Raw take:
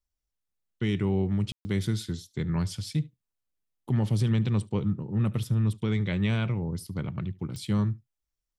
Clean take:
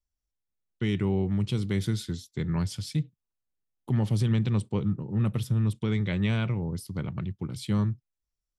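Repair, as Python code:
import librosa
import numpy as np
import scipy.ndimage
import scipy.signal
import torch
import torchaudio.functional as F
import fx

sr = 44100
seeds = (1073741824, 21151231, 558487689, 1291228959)

y = fx.fix_declick_ar(x, sr, threshold=10.0)
y = fx.fix_ambience(y, sr, seeds[0], print_start_s=3.16, print_end_s=3.66, start_s=1.52, end_s=1.65)
y = fx.fix_echo_inverse(y, sr, delay_ms=73, level_db=-23.0)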